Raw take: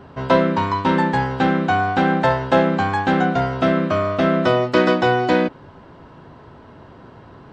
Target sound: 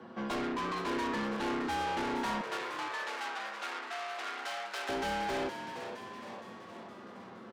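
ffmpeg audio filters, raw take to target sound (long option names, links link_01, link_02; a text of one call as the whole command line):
ffmpeg -i in.wav -filter_complex "[0:a]aecho=1:1:6.7:0.65,afreqshift=81,asoftclip=type=tanh:threshold=-24dB,asettb=1/sr,asplit=3[link_01][link_02][link_03];[link_01]atrim=end=2.414[link_04];[link_02]atrim=start=2.41:end=4.89,asetpts=PTS-STARTPTS,afade=type=in:duration=0.004:curve=qsin,afade=type=out:start_time=2.476:duration=0.004:curve=qsin,highpass=950[link_05];[link_03]atrim=start=4.886[link_06];[link_04][link_05]acrossfade=duration=0.004:curve1=hsin:curve2=qsin[link_07];[link_07][link_06]acrossfade=duration=0.004:curve1=qsin:curve2=hsin,asplit=8[link_08][link_09][link_10][link_11][link_12][link_13][link_14][link_15];[link_09]adelay=466,afreqshift=100,volume=-9dB[link_16];[link_10]adelay=932,afreqshift=200,volume=-13.9dB[link_17];[link_11]adelay=1398,afreqshift=300,volume=-18.8dB[link_18];[link_12]adelay=1864,afreqshift=400,volume=-23.6dB[link_19];[link_13]adelay=2330,afreqshift=500,volume=-28.5dB[link_20];[link_14]adelay=2796,afreqshift=600,volume=-33.4dB[link_21];[link_15]adelay=3262,afreqshift=700,volume=-38.3dB[link_22];[link_08][link_16][link_17][link_18][link_19][link_20][link_21][link_22]amix=inputs=8:normalize=0,volume=-8.5dB" out.wav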